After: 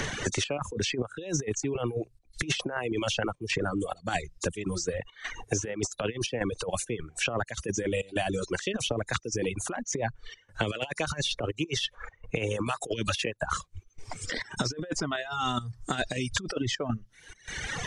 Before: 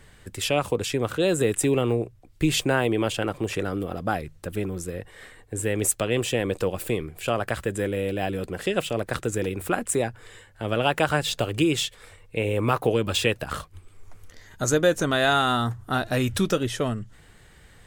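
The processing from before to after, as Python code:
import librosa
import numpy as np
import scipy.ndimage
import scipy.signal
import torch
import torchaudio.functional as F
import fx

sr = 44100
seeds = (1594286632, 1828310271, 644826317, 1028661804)

y = fx.freq_compress(x, sr, knee_hz=3500.0, ratio=1.5)
y = fx.dereverb_blind(y, sr, rt60_s=1.5)
y = fx.step_gate(y, sr, bpm=103, pattern='xxx.xxx.', floor_db=-12.0, edge_ms=4.5)
y = fx.over_compress(y, sr, threshold_db=-29.0, ratio=-0.5)
y = fx.dereverb_blind(y, sr, rt60_s=0.58)
y = fx.band_squash(y, sr, depth_pct=100)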